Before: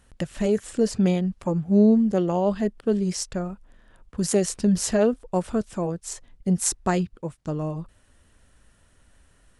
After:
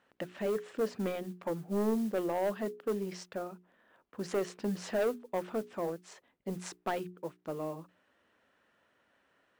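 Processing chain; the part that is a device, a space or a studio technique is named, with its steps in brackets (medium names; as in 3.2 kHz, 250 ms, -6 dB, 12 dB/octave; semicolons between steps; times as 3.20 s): carbon microphone (band-pass 320–2800 Hz; saturation -20.5 dBFS, distortion -12 dB; modulation noise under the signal 24 dB); hum notches 60/120/180/240/300/360/420 Hz; trim -4 dB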